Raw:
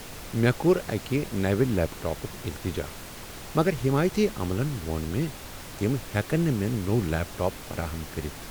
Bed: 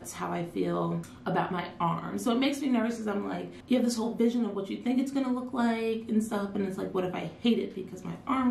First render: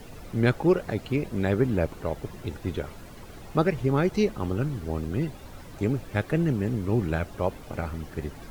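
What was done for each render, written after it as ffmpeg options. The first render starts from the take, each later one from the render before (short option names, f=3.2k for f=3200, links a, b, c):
-af "afftdn=nr=11:nf=-41"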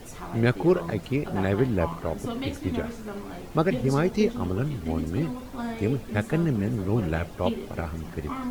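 -filter_complex "[1:a]volume=-5.5dB[a];[0:a][a]amix=inputs=2:normalize=0"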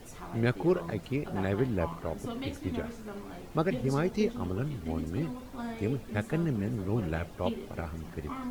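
-af "volume=-5.5dB"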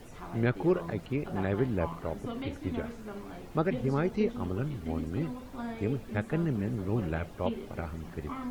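-filter_complex "[0:a]acrossover=split=3300[a][b];[b]acompressor=threshold=-59dB:ratio=4:attack=1:release=60[c];[a][c]amix=inputs=2:normalize=0"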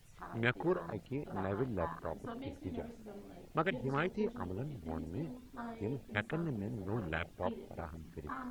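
-af "afwtdn=0.0126,tiltshelf=f=1.2k:g=-9"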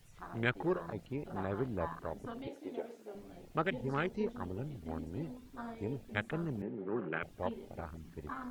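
-filter_complex "[0:a]asettb=1/sr,asplit=3[a][b][c];[a]atrim=end=2.474[d];[b]atrim=start=2.47:end=3.15,asetpts=PTS-STARTPTS,afade=t=in:d=0.004:c=qsin,afade=t=out:st=0.676:d=0.004:c=qsin,highpass=f=380:t=q:w=1.6[e];[c]atrim=start=3.146[f];[d][e]acrossfade=d=0.004:c1=hsin:c2=qsin[g];[g][f]acrossfade=d=0.004:c1=qsin:c2=hsin,asettb=1/sr,asplit=3[h][i][j];[h]atrim=end=6.624[k];[i]atrim=start=6.62:end=7.23,asetpts=PTS-STARTPTS,afade=t=in:d=0.004:c=qsin,afade=t=out:st=0.606:d=0.004:c=qsin,highpass=f=160:w=0.5412,highpass=f=160:w=1.3066,equalizer=f=380:t=q:w=4:g=7,equalizer=f=670:t=q:w=4:g=-4,equalizer=f=1.3k:t=q:w=4:g=3,lowpass=f=2.6k:w=0.5412,lowpass=f=2.6k:w=1.3066[l];[j]atrim=start=7.226[m];[k][l]acrossfade=d=0.004:c1=hsin:c2=qsin[n];[n][m]acrossfade=d=0.004:c1=qsin:c2=hsin"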